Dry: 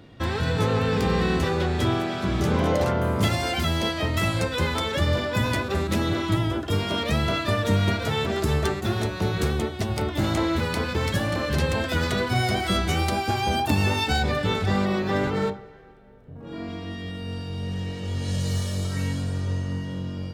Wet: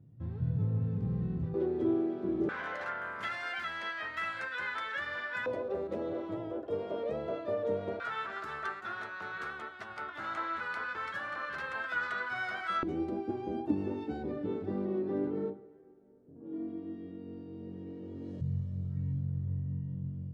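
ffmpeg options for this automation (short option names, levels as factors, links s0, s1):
-af "asetnsamples=n=441:p=0,asendcmd='1.54 bandpass f 350;2.49 bandpass f 1600;5.46 bandpass f 510;8 bandpass f 1400;12.83 bandpass f 320;18.41 bandpass f 130',bandpass=f=130:t=q:w=3.9:csg=0"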